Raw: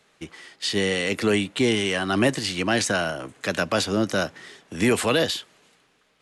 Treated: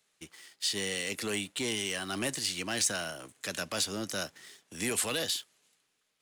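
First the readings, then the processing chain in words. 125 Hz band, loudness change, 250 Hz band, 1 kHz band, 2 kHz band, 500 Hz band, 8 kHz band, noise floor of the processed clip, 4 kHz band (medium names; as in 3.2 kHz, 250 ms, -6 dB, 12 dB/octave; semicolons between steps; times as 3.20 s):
-14.5 dB, -9.0 dB, -14.5 dB, -12.5 dB, -10.0 dB, -14.0 dB, -0.5 dB, -77 dBFS, -6.0 dB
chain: waveshaping leveller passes 1; pre-emphasis filter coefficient 0.8; trim -3 dB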